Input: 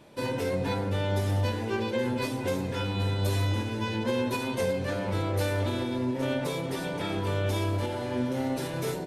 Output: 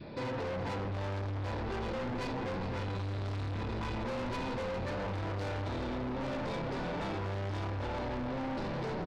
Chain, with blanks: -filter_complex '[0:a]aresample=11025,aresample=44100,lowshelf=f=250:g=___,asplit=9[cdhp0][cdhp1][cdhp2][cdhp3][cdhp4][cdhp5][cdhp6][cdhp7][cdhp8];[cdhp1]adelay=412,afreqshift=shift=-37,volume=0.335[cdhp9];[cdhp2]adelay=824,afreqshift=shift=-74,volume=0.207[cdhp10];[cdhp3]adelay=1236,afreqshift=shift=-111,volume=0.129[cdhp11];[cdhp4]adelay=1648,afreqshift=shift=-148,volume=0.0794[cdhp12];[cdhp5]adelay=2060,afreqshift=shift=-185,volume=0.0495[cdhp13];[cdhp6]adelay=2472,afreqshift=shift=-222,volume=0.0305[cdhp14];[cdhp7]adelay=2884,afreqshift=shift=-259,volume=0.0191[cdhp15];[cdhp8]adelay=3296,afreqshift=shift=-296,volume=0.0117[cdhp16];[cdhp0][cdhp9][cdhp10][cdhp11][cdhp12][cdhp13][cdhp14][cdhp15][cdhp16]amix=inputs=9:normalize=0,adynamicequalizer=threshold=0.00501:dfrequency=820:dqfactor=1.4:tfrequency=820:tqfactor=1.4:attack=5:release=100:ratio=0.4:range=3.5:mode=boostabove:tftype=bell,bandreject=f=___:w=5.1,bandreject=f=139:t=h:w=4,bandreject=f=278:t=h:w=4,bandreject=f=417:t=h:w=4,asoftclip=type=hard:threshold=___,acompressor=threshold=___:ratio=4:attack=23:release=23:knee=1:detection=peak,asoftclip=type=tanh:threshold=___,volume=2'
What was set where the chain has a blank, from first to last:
7, 3.1k, 0.0398, 0.00794, 0.0112